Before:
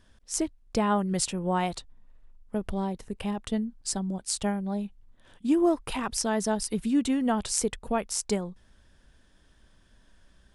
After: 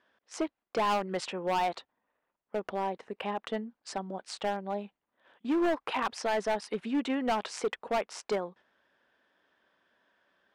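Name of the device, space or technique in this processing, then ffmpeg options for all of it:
walkie-talkie: -af "highpass=480,lowpass=2.4k,asoftclip=type=hard:threshold=-29dB,agate=range=-6dB:threshold=-58dB:ratio=16:detection=peak,volume=5dB"

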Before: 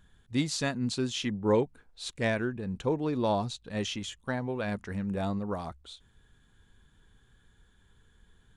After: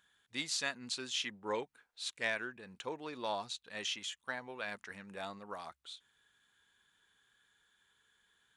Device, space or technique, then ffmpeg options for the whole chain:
filter by subtraction: -filter_complex "[0:a]asplit=2[a][b];[b]lowpass=2k,volume=-1[c];[a][c]amix=inputs=2:normalize=0,volume=-3dB"

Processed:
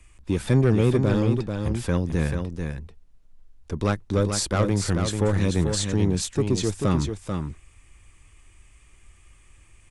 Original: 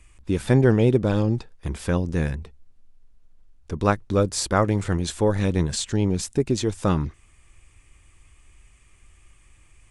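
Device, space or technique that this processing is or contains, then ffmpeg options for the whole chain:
one-band saturation: -filter_complex "[0:a]acrossover=split=220|2200[a][b][c];[b]asoftclip=type=tanh:threshold=-19dB[d];[a][d][c]amix=inputs=3:normalize=0,aecho=1:1:439:0.501"

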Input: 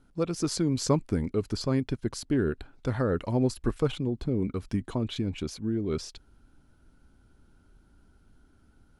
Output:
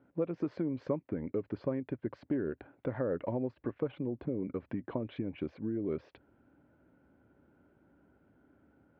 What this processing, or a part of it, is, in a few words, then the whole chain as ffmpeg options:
bass amplifier: -af "acompressor=threshold=-31dB:ratio=6,highpass=f=90:w=0.5412,highpass=f=90:w=1.3066,equalizer=f=94:t=q:w=4:g=-8,equalizer=f=140:t=q:w=4:g=-4,equalizer=f=210:t=q:w=4:g=-3,equalizer=f=300:t=q:w=4:g=3,equalizer=f=560:t=q:w=4:g=8,equalizer=f=1.3k:t=q:w=4:g=-5,lowpass=f=2.2k:w=0.5412,lowpass=f=2.2k:w=1.3066"

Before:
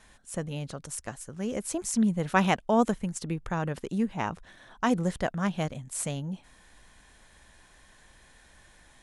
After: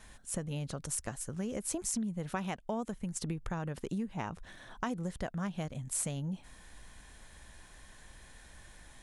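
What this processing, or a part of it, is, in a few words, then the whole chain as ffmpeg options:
ASMR close-microphone chain: -af "lowshelf=f=160:g=5.5,acompressor=threshold=-33dB:ratio=8,highshelf=f=9.2k:g=5.5"

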